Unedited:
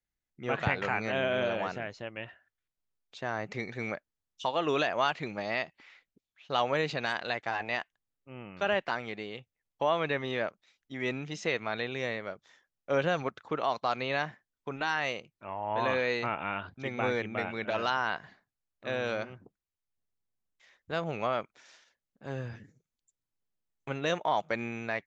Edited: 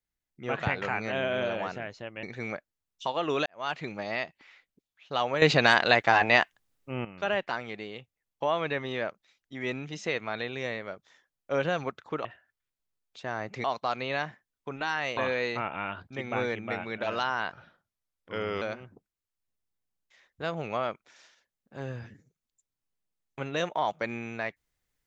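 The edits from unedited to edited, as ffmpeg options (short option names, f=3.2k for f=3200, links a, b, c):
-filter_complex "[0:a]asplit=10[a][b][c][d][e][f][g][h][i][j];[a]atrim=end=2.232[k];[b]atrim=start=3.618:end=4.85,asetpts=PTS-STARTPTS,afade=t=out:st=1.228:d=0.004:c=hsin[l];[c]atrim=start=4.85:end=6.812,asetpts=PTS-STARTPTS,afade=t=in:d=0.27:c=qua[m];[d]atrim=start=6.808:end=8.442,asetpts=PTS-STARTPTS,volume=11.5dB[n];[e]atrim=start=8.438:end=13.642[o];[f]atrim=start=2.228:end=3.622[p];[g]atrim=start=13.638:end=15.172[q];[h]atrim=start=15.838:end=18.194[r];[i]atrim=start=18.19:end=19.11,asetpts=PTS-STARTPTS,asetrate=37044,aresample=44100[s];[j]atrim=start=19.106[t];[l][m]concat=n=2:v=0:a=1[u];[k][u]acrossfade=d=0.004:c1=hsin:c2=hsin[v];[v][n]acrossfade=d=0.004:c1=hsin:c2=hsin[w];[w][o]acrossfade=d=0.004:c1=hsin:c2=hsin[x];[x][p]acrossfade=d=0.004:c1=hsin:c2=hsin[y];[y][q]acrossfade=d=0.004:c1=hsin:c2=hsin[z];[z][r]acrossfade=d=0.004:c1=hsin:c2=hsin[aa];[aa][s]acrossfade=d=0.004:c1=hsin:c2=hsin[ab];[ab][t]acrossfade=d=0.004:c1=hsin:c2=hsin"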